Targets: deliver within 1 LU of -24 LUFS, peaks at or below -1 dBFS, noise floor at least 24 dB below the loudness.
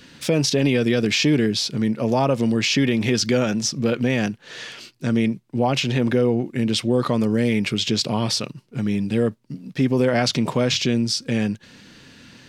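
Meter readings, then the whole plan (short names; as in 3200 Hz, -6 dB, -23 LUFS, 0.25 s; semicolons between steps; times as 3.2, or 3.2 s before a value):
loudness -21.0 LUFS; peak -6.5 dBFS; loudness target -24.0 LUFS
-> gain -3 dB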